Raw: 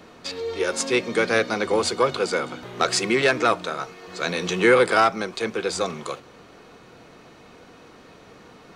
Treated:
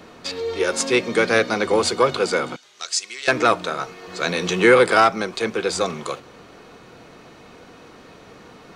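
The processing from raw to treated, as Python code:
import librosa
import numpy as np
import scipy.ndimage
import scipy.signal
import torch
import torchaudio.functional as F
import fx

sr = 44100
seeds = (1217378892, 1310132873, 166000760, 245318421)

y = fx.bandpass_q(x, sr, hz=6400.0, q=1.5, at=(2.56, 3.28))
y = y * 10.0 ** (3.0 / 20.0)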